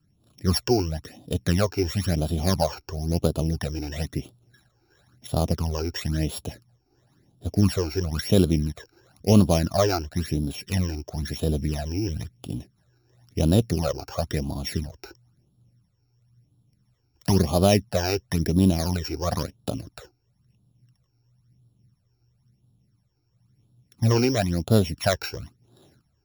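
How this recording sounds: a buzz of ramps at a fixed pitch in blocks of 8 samples; phasing stages 12, 0.98 Hz, lowest notch 180–2000 Hz

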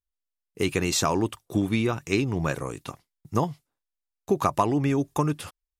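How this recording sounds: noise floor -87 dBFS; spectral tilt -5.0 dB/oct

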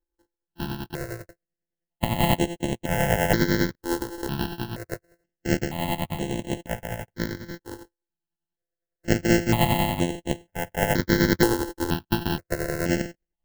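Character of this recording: a buzz of ramps at a fixed pitch in blocks of 128 samples; tremolo triangle 10 Hz, depth 65%; aliases and images of a low sample rate 1200 Hz, jitter 0%; notches that jump at a steady rate 2.1 Hz 650–4900 Hz

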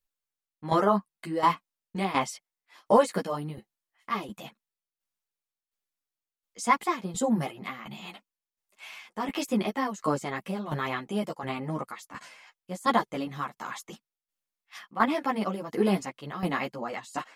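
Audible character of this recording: tremolo saw down 1.4 Hz, depth 75%; a shimmering, thickened sound

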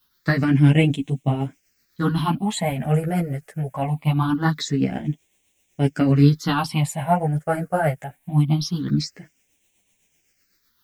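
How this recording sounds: a quantiser's noise floor 12-bit, dither triangular; phasing stages 6, 0.23 Hz, lowest notch 260–1300 Hz; tremolo triangle 7.9 Hz, depth 50%; a shimmering, thickened sound

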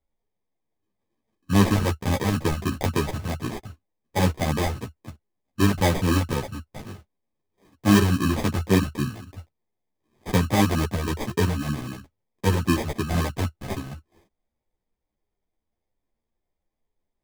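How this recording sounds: phasing stages 2, 3.8 Hz, lowest notch 350–1300 Hz; aliases and images of a low sample rate 1400 Hz, jitter 0%; a shimmering, thickened sound

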